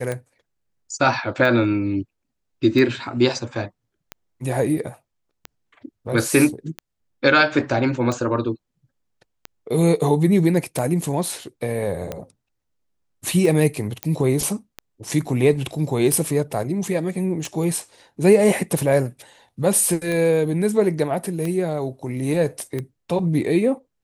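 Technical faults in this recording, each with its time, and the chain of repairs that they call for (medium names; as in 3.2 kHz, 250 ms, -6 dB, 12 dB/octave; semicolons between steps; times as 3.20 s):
tick 45 rpm -14 dBFS
14.03 s: pop -8 dBFS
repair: de-click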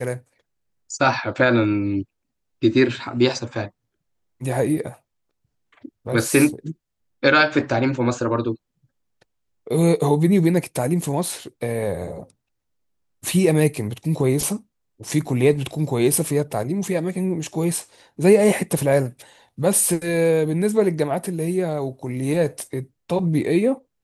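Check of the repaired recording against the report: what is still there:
nothing left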